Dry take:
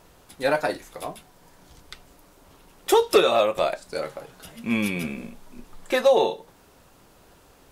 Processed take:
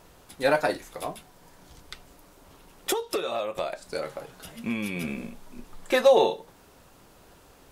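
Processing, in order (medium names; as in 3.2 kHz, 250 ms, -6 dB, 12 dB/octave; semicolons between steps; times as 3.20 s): 2.92–5.08 s: compression 8:1, threshold -26 dBFS, peak gain reduction 14 dB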